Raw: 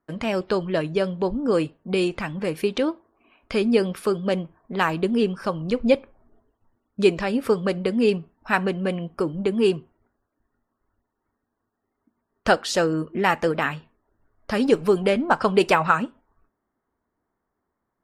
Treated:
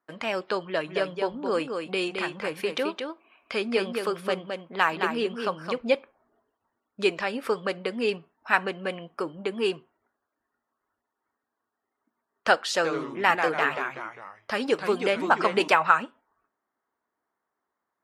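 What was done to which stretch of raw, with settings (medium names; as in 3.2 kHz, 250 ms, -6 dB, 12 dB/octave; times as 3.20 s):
0.66–5.78 s: delay 216 ms -5.5 dB
12.76–15.68 s: ever faster or slower copies 81 ms, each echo -2 st, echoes 3, each echo -6 dB
whole clip: high-pass 1.3 kHz 6 dB/octave; treble shelf 3.8 kHz -9.5 dB; trim +4 dB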